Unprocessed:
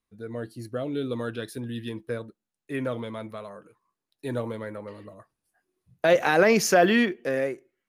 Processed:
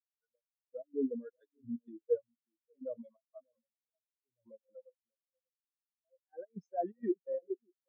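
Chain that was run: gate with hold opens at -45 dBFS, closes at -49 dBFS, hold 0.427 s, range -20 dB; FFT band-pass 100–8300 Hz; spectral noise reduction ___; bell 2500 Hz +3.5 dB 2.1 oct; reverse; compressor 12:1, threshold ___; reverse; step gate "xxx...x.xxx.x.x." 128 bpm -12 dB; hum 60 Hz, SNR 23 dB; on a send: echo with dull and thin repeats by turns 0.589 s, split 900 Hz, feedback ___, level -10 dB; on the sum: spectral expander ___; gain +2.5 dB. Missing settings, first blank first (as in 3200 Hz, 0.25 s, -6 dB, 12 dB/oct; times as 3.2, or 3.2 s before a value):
15 dB, -31 dBFS, 53%, 4:1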